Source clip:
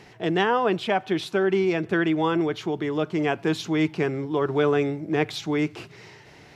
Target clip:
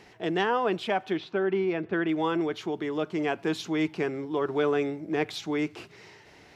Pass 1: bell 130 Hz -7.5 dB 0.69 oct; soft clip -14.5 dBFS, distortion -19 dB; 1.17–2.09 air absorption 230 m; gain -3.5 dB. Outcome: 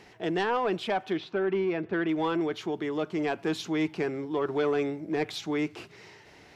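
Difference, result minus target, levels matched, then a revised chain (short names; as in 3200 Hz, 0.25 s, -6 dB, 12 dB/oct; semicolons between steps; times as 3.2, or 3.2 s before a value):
soft clip: distortion +16 dB
bell 130 Hz -7.5 dB 0.69 oct; soft clip -4.5 dBFS, distortion -35 dB; 1.17–2.09 air absorption 230 m; gain -3.5 dB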